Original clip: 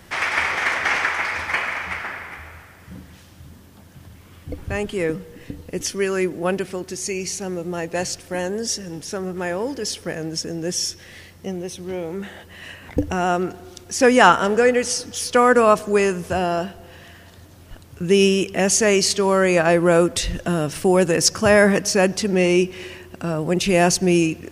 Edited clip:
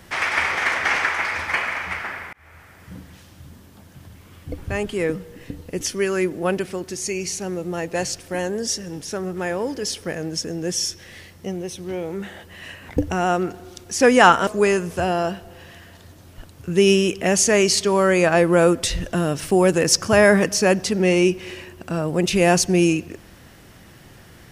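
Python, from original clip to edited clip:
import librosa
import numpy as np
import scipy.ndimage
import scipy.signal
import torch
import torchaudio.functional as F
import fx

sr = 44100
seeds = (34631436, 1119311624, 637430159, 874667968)

y = fx.edit(x, sr, fx.fade_in_span(start_s=2.33, length_s=0.61, curve='qsin'),
    fx.cut(start_s=14.47, length_s=1.33), tone=tone)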